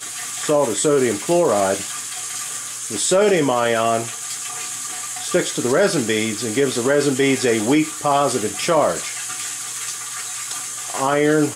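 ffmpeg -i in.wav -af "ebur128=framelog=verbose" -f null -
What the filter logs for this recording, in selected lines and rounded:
Integrated loudness:
  I:         -19.7 LUFS
  Threshold: -29.7 LUFS
Loudness range:
  LRA:         2.5 LU
  Threshold: -39.6 LUFS
  LRA low:   -20.9 LUFS
  LRA high:  -18.4 LUFS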